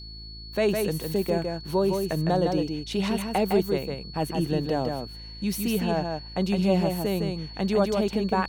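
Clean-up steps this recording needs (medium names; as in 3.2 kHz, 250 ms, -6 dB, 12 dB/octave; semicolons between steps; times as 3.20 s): de-hum 54.6 Hz, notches 7; band-stop 4.4 kHz, Q 30; inverse comb 159 ms -4.5 dB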